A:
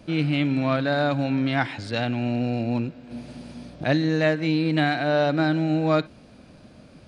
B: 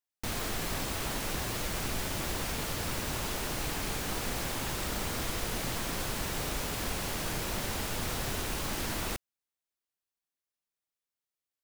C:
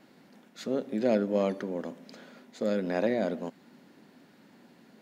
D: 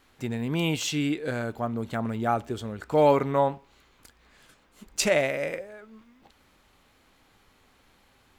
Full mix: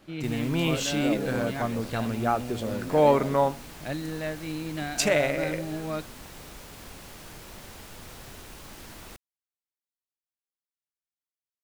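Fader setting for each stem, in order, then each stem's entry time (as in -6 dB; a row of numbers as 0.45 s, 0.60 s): -11.5 dB, -10.5 dB, -6.0 dB, 0.0 dB; 0.00 s, 0.00 s, 0.00 s, 0.00 s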